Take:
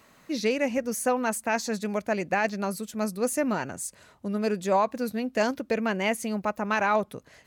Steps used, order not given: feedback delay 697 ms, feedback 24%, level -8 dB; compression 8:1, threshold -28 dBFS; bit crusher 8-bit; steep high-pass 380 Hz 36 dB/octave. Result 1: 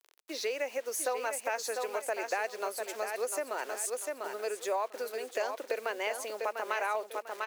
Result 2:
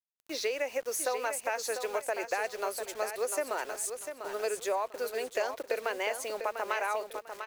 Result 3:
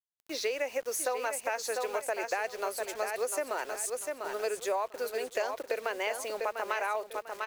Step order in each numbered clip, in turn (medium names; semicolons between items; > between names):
bit crusher > feedback delay > compression > steep high-pass; steep high-pass > bit crusher > compression > feedback delay; steep high-pass > bit crusher > feedback delay > compression